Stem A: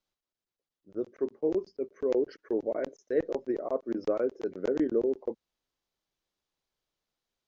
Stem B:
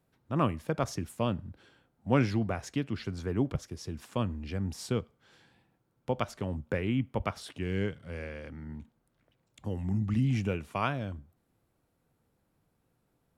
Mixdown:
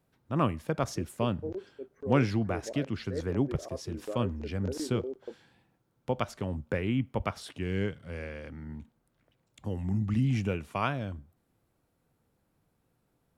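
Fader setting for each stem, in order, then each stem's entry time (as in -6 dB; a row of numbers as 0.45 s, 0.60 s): -9.0 dB, +0.5 dB; 0.00 s, 0.00 s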